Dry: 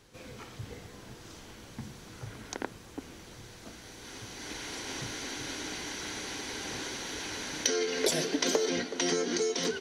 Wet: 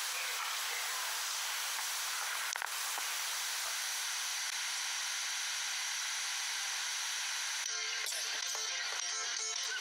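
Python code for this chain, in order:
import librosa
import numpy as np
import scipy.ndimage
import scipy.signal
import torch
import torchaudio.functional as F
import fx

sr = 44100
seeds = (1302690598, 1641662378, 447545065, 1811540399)

y = scipy.signal.sosfilt(scipy.signal.butter(4, 910.0, 'highpass', fs=sr, output='sos'), x)
y = fx.high_shelf(y, sr, hz=8400.0, db=7.0)
y = fx.gate_flip(y, sr, shuts_db=-32.0, range_db=-30)
y = fx.env_flatten(y, sr, amount_pct=100)
y = F.gain(torch.from_numpy(y), 2.5).numpy()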